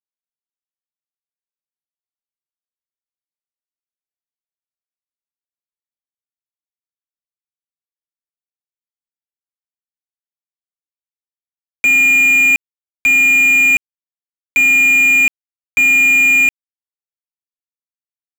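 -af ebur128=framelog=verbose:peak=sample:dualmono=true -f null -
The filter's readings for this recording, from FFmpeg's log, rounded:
Integrated loudness:
  I:          -6.5 LUFS
  Threshold: -16.5 LUFS
Loudness range:
  LRA:         4.2 LU
  Threshold: -28.4 LUFS
  LRA low:   -11.2 LUFS
  LRA high:   -7.0 LUFS
Sample peak:
  Peak:       -5.4 dBFS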